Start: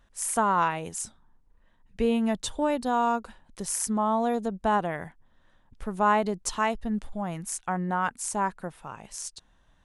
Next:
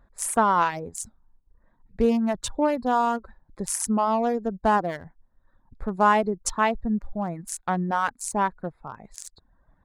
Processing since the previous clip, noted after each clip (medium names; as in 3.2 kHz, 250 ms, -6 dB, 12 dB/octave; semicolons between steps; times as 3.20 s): local Wiener filter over 15 samples; reverb removal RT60 0.83 s; trim +4.5 dB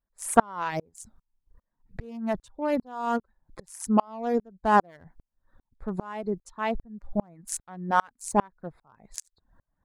sawtooth tremolo in dB swelling 2.5 Hz, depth 36 dB; trim +6.5 dB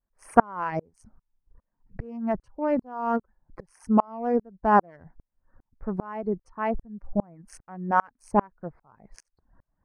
vibrato 0.53 Hz 23 cents; boxcar filter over 12 samples; trim +2 dB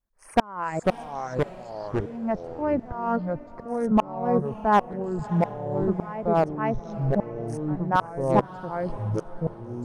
hard clipper -11 dBFS, distortion -14 dB; ever faster or slower copies 398 ms, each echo -4 st, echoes 3; echo that smears into a reverb 627 ms, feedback 41%, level -16 dB